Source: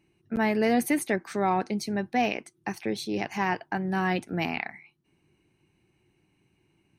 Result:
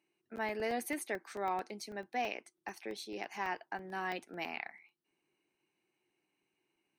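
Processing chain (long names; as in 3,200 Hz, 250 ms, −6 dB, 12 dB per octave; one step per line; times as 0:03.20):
high-pass filter 380 Hz 12 dB per octave
regular buffer underruns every 0.11 s, samples 64, zero, from 0:00.38
level −9 dB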